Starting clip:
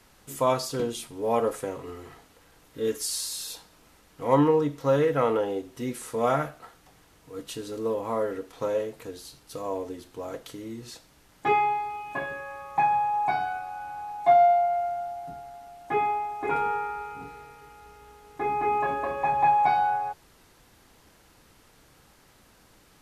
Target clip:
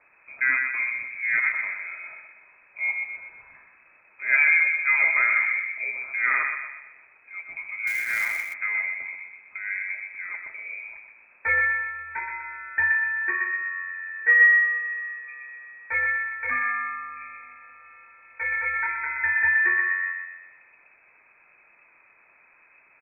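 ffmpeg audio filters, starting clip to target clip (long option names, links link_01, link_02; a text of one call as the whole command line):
ffmpeg -i in.wav -filter_complex "[0:a]asplit=2[link_01][link_02];[link_02]adelay=124,lowpass=frequency=1400:poles=1,volume=-3.5dB,asplit=2[link_03][link_04];[link_04]adelay=124,lowpass=frequency=1400:poles=1,volume=0.51,asplit=2[link_05][link_06];[link_06]adelay=124,lowpass=frequency=1400:poles=1,volume=0.51,asplit=2[link_07][link_08];[link_08]adelay=124,lowpass=frequency=1400:poles=1,volume=0.51,asplit=2[link_09][link_10];[link_10]adelay=124,lowpass=frequency=1400:poles=1,volume=0.51,asplit=2[link_11][link_12];[link_12]adelay=124,lowpass=frequency=1400:poles=1,volume=0.51,asplit=2[link_13][link_14];[link_14]adelay=124,lowpass=frequency=1400:poles=1,volume=0.51[link_15];[link_01][link_03][link_05][link_07][link_09][link_11][link_13][link_15]amix=inputs=8:normalize=0,lowpass=frequency=2200:width_type=q:width=0.5098,lowpass=frequency=2200:width_type=q:width=0.6013,lowpass=frequency=2200:width_type=q:width=0.9,lowpass=frequency=2200:width_type=q:width=2.563,afreqshift=-2600,asettb=1/sr,asplit=3[link_16][link_17][link_18];[link_16]atrim=end=7.874[link_19];[link_17]atrim=start=7.87:end=8.54,asetpts=PTS-STARTPTS,afade=type=in:duration=0.004:curve=qsin,afade=type=out:start_time=0.666:duration=0.004:curve=qsin,acrusher=bits=3:mode=log:mix=0:aa=0.000001[link_20];[link_18]atrim=start=8.536[link_21];[link_19][link_20]acrossfade=duration=0.004:curve1=hsin:curve2=qsin[link_22];[link_22][link_21]acrossfade=duration=0.004:curve1=qsin:curve2=hsin" out.wav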